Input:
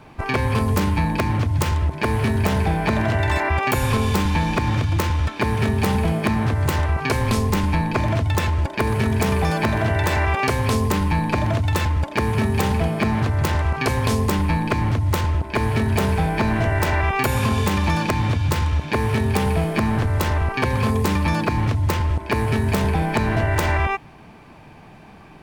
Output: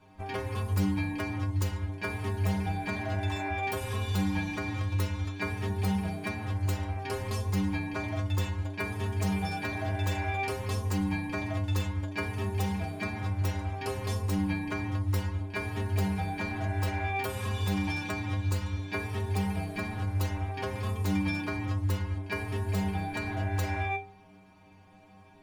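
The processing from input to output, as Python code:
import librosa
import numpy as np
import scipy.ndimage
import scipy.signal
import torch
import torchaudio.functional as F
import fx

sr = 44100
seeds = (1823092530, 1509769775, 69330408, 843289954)

y = fx.stiff_resonator(x, sr, f0_hz=94.0, decay_s=0.54, stiffness=0.008)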